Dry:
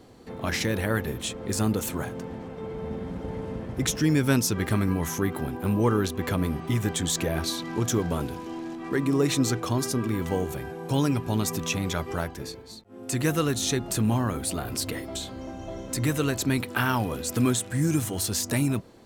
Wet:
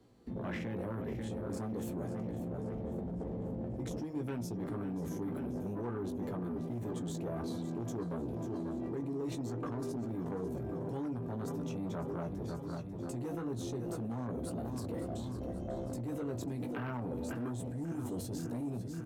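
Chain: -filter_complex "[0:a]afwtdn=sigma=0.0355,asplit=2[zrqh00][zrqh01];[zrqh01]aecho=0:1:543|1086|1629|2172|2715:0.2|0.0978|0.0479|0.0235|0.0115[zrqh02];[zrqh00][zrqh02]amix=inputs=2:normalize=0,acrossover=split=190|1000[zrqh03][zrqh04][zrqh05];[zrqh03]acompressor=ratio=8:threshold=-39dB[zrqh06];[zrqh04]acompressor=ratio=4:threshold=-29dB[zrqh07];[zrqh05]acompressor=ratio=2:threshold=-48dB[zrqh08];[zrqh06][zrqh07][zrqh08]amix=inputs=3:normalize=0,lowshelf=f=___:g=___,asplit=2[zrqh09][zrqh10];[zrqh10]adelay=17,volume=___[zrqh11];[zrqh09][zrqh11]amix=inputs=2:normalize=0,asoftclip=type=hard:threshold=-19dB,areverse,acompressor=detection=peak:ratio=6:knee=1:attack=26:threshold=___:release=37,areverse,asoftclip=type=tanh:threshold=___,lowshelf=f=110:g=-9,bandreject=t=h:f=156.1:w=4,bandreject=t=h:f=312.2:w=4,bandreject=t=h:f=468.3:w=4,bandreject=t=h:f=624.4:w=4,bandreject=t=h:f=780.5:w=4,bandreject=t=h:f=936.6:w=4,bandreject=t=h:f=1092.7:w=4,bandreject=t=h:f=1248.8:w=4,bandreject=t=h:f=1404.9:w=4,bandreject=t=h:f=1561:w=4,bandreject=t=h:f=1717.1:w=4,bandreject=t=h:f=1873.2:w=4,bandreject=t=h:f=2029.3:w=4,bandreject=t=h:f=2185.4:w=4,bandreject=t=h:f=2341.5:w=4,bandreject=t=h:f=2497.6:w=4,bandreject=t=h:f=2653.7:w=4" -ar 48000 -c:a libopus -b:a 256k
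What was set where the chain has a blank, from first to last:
280, 9.5, -5dB, -36dB, -29dB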